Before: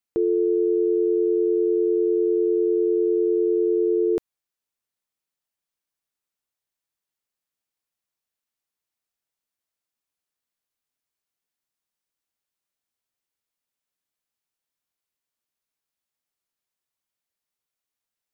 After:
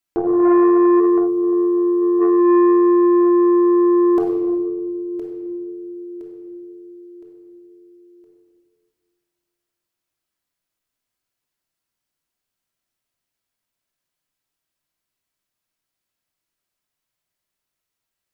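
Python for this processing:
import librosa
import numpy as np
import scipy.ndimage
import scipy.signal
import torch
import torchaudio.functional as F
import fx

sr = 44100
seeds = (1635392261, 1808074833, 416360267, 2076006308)

y = fx.tilt_eq(x, sr, slope=3.0, at=(0.99, 2.2), fade=0.02)
y = fx.rider(y, sr, range_db=10, speed_s=2.0)
y = fx.echo_feedback(y, sr, ms=1015, feedback_pct=42, wet_db=-12.5)
y = fx.room_shoebox(y, sr, seeds[0], volume_m3=1900.0, walls='mixed', distance_m=2.9)
y = fx.transformer_sat(y, sr, knee_hz=460.0)
y = y * librosa.db_to_amplitude(2.0)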